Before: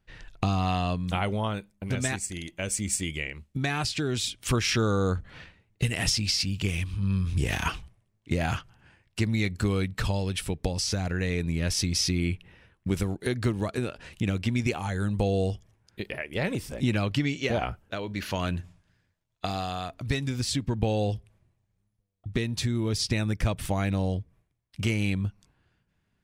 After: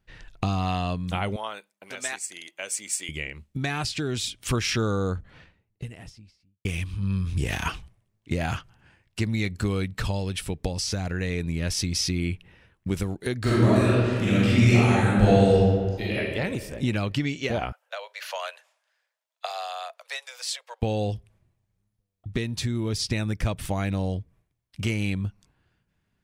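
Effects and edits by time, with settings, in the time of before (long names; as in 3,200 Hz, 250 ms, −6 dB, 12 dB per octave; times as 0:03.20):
0:01.36–0:03.09: high-pass filter 610 Hz
0:04.63–0:06.65: fade out and dull
0:13.40–0:16.16: thrown reverb, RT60 1.9 s, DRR −9 dB
0:17.72–0:20.82: Butterworth high-pass 510 Hz 72 dB per octave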